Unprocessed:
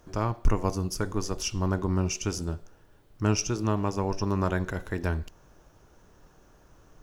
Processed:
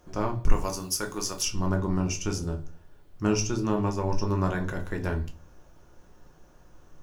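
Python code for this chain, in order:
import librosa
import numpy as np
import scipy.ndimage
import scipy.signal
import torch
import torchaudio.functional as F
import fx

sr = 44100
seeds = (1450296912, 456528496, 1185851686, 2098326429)

y = fx.tilt_eq(x, sr, slope=3.0, at=(0.52, 1.45))
y = fx.room_shoebox(y, sr, seeds[0], volume_m3=120.0, walls='furnished', distance_m=0.94)
y = y * 10.0 ** (-2.0 / 20.0)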